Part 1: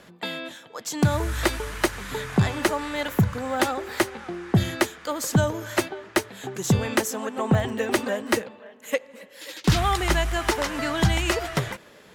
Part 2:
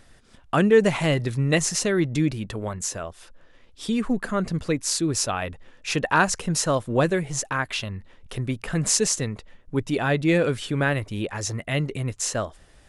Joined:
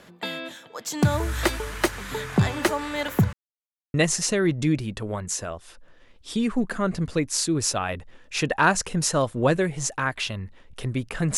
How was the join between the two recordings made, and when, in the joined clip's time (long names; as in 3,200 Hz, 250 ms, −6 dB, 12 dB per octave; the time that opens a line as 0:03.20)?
part 1
0:03.33–0:03.94: silence
0:03.94: continue with part 2 from 0:01.47